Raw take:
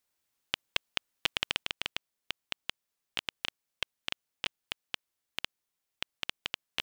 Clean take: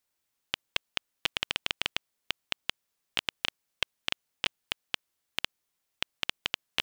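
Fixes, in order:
level correction +4.5 dB, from 0:01.63

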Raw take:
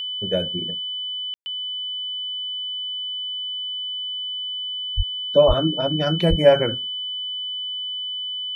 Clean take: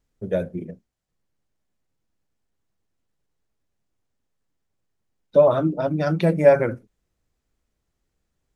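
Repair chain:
notch filter 3,000 Hz, Q 30
0:04.96–0:05.08: high-pass filter 140 Hz 24 dB per octave
0:05.47–0:05.59: high-pass filter 140 Hz 24 dB per octave
0:06.29–0:06.41: high-pass filter 140 Hz 24 dB per octave
ambience match 0:01.34–0:01.46

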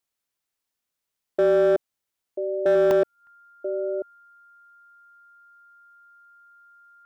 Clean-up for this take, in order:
clipped peaks rebuilt −14.5 dBFS
notch filter 1,400 Hz, Q 30
repair the gap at 0:02.91/0:03.27, 1.1 ms
echo removal 988 ms −10.5 dB

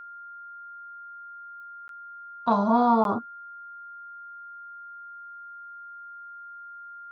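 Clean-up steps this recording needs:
click removal
notch filter 1,400 Hz, Q 30
repair the gap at 0:01.88/0:03.04, 12 ms

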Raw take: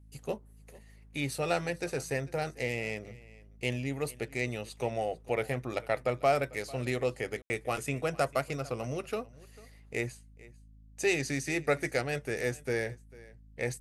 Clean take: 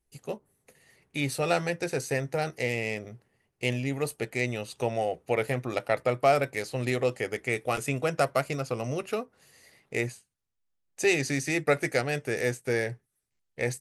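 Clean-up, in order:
hum removal 53.4 Hz, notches 5
ambience match 0:07.42–0:07.50
echo removal 446 ms −21.5 dB
level 0 dB, from 0:00.78 +4 dB

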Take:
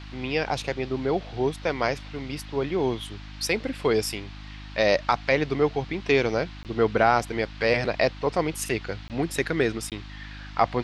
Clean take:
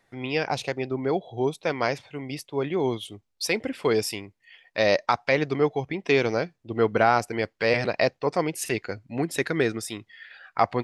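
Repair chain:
hum removal 51.3 Hz, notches 6
repair the gap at 0:06.63/0:09.08/0:09.90, 18 ms
noise reduction from a noise print 22 dB

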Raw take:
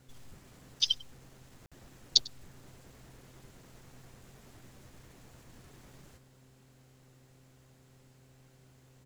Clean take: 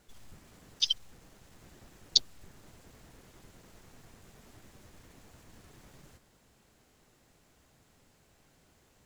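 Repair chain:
hum removal 129.8 Hz, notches 4
repair the gap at 0:01.66, 56 ms
echo removal 98 ms −22.5 dB

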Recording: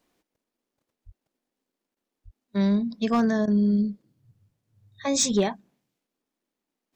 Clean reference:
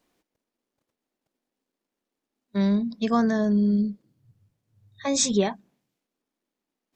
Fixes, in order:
clipped peaks rebuilt −14 dBFS
high-pass at the plosives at 0:01.05/0:02.24
repair the gap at 0:01.95/0:03.46, 14 ms

